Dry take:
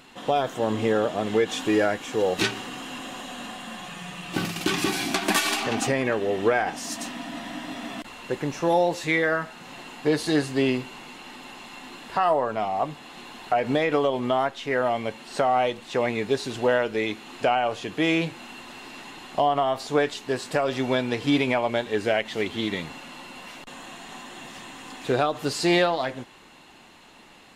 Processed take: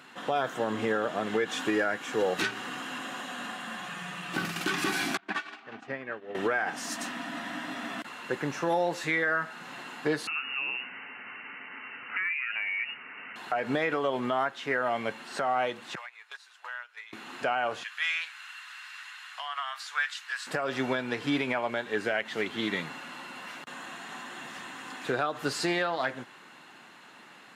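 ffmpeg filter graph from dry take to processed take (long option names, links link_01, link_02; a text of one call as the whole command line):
ffmpeg -i in.wav -filter_complex "[0:a]asettb=1/sr,asplit=3[link_01][link_02][link_03];[link_01]atrim=end=5.174[link_04];[link_02]atrim=start=5.17:end=6.35,asetpts=PTS-STARTPTS,afade=type=in:duration=0.004:curve=qsin,afade=type=out:start_time=1.176:duration=0.004:curve=qsin,lowpass=3500,agate=range=-33dB:threshold=-16dB:ratio=3:release=100:detection=peak[link_05];[link_03]atrim=start=6.346[link_06];[link_04][link_05]acrossfade=duration=0.004:curve1=hsin:curve2=qsin[link_07];[link_07][link_06]acrossfade=duration=0.004:curve1=qsin:curve2=hsin,asettb=1/sr,asplit=3[link_08][link_09][link_10];[link_08]atrim=end=10.274[link_11];[link_09]atrim=start=10.27:end=13.36,asetpts=PTS-STARTPTS,afade=type=in:duration=0.004:curve=qsin,afade=type=out:start_time=3.086:duration=0.004:curve=qsin,acompressor=threshold=-28dB:ratio=5:attack=3.2:release=140:knee=1:detection=peak,lowpass=frequency=2600:width_type=q:width=0.5098,lowpass=frequency=2600:width_type=q:width=0.6013,lowpass=frequency=2600:width_type=q:width=0.9,lowpass=frequency=2600:width_type=q:width=2.563,afreqshift=-3000[link_12];[link_10]atrim=start=13.356[link_13];[link_11][link_12]acrossfade=duration=0.004:curve1=hsin:curve2=qsin[link_14];[link_14][link_13]acrossfade=duration=0.004:curve1=qsin:curve2=hsin,asettb=1/sr,asplit=3[link_15][link_16][link_17];[link_15]atrim=end=15.954[link_18];[link_16]atrim=start=15.95:end=17.13,asetpts=PTS-STARTPTS,afade=type=in:duration=0.004:curve=qsin,afade=type=out:start_time=1.176:duration=0.004:curve=qsin,agate=range=-17dB:threshold=-24dB:ratio=16:release=100:detection=peak,highpass=frequency=1000:width=0.5412,highpass=frequency=1000:width=1.3066,acompressor=threshold=-40dB:ratio=4:attack=3.2:release=140:knee=1:detection=peak[link_19];[link_17]atrim=start=17.126[link_20];[link_18][link_19]acrossfade=duration=0.004:curve1=hsin:curve2=qsin[link_21];[link_21][link_20]acrossfade=duration=0.004:curve1=qsin:curve2=hsin,asettb=1/sr,asplit=3[link_22][link_23][link_24];[link_22]atrim=end=17.834[link_25];[link_23]atrim=start=17.83:end=20.47,asetpts=PTS-STARTPTS,afade=type=in:duration=0.004:curve=qsin,afade=type=out:start_time=2.636:duration=0.004:curve=qsin,highpass=frequency=1300:width=0.5412,highpass=frequency=1300:width=1.3066,highshelf=frequency=12000:gain=-5[link_26];[link_24]atrim=start=20.466[link_27];[link_25][link_26]acrossfade=duration=0.004:curve1=hsin:curve2=qsin[link_28];[link_28][link_27]acrossfade=duration=0.004:curve1=qsin:curve2=hsin,highpass=frequency=120:width=0.5412,highpass=frequency=120:width=1.3066,equalizer=frequency=1500:width_type=o:width=0.88:gain=9.5,alimiter=limit=-13.5dB:level=0:latency=1:release=227,volume=-4dB" out.wav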